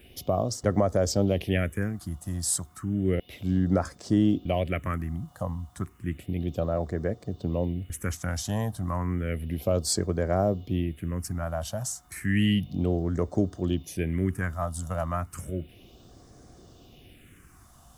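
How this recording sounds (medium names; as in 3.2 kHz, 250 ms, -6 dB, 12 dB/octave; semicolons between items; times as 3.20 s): a quantiser's noise floor 12-bit, dither triangular; phasing stages 4, 0.32 Hz, lowest notch 380–2700 Hz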